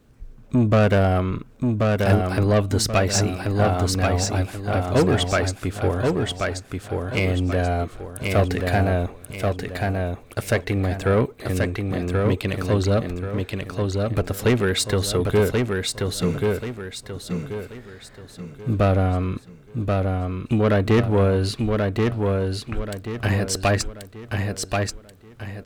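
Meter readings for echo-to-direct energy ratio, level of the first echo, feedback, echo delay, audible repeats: -3.0 dB, -3.5 dB, 36%, 1083 ms, 4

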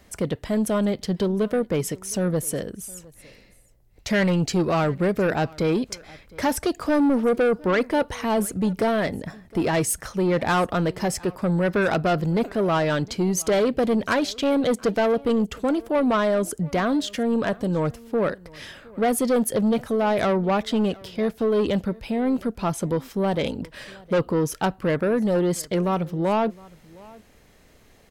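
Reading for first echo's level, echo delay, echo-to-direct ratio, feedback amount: -23.5 dB, 712 ms, -23.5 dB, no regular repeats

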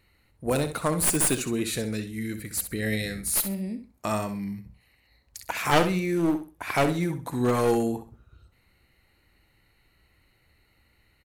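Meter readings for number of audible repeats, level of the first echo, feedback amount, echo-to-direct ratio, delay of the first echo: 2, -10.5 dB, 24%, -10.0 dB, 65 ms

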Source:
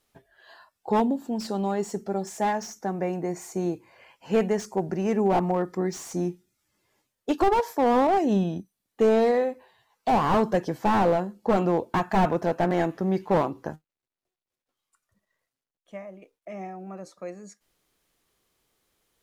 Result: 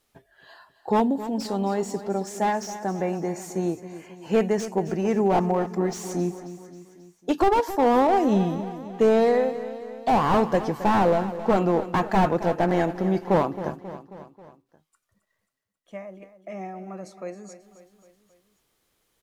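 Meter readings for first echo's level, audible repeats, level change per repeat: -13.5 dB, 4, -5.0 dB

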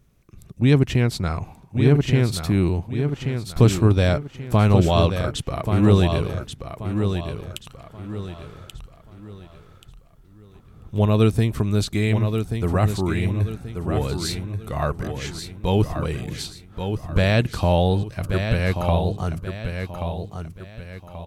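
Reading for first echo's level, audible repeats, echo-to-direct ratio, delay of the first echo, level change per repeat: -7.0 dB, 4, -6.5 dB, 1132 ms, -9.0 dB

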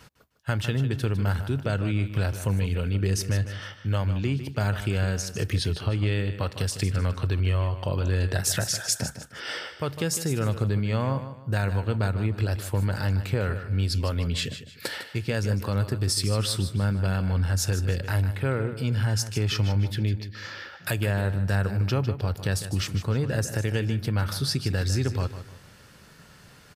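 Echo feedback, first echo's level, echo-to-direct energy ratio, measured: 33%, -11.5 dB, -11.0 dB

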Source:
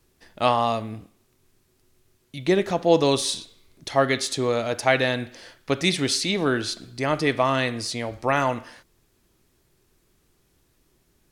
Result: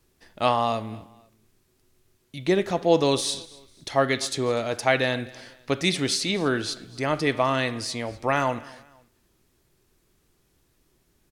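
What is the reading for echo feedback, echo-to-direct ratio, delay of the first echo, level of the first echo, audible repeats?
36%, -22.0 dB, 248 ms, -22.5 dB, 2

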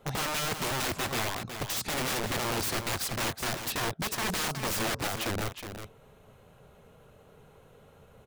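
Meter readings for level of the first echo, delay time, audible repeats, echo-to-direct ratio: -8.5 dB, 367 ms, 1, -8.5 dB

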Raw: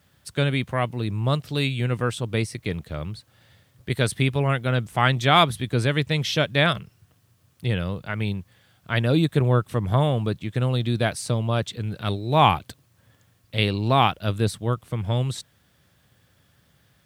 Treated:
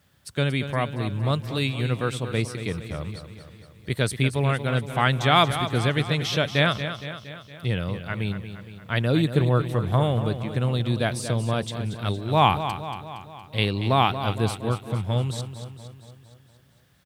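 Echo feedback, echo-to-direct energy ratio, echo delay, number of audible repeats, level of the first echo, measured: 58%, -8.5 dB, 232 ms, 6, -10.5 dB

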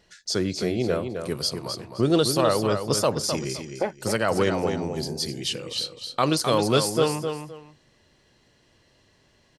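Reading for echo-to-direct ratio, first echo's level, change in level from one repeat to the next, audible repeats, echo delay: -7.0 dB, -7.0 dB, -12.5 dB, 2, 259 ms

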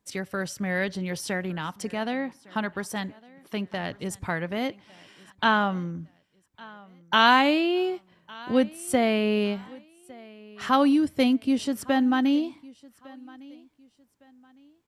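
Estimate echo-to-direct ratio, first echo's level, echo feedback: -22.5 dB, -23.0 dB, 30%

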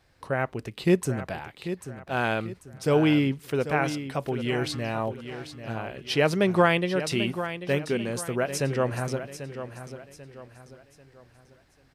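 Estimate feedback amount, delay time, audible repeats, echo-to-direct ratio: 38%, 791 ms, 3, -10.5 dB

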